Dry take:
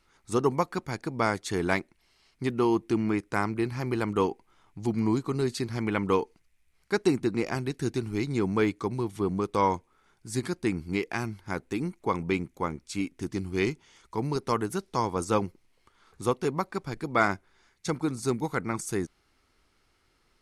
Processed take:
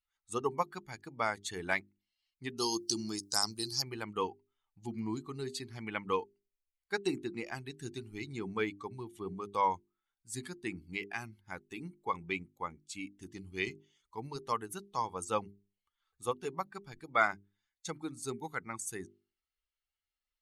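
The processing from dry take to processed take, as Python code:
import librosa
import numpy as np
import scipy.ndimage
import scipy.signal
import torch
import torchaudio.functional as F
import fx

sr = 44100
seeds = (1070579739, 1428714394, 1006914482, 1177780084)

y = fx.high_shelf_res(x, sr, hz=3400.0, db=14.0, q=3.0, at=(2.58, 3.82))
y = fx.bin_expand(y, sr, power=1.5)
y = fx.low_shelf(y, sr, hz=470.0, db=-11.5)
y = fx.hum_notches(y, sr, base_hz=50, count=8)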